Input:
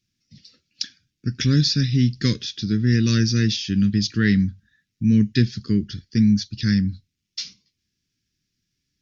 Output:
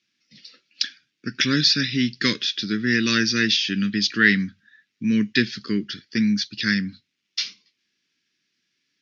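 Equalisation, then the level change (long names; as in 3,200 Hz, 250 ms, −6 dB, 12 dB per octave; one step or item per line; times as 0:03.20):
spectral tilt +3 dB per octave
dynamic equaliser 490 Hz, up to −4 dB, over −42 dBFS, Q 1.5
band-pass filter 250–2,600 Hz
+8.5 dB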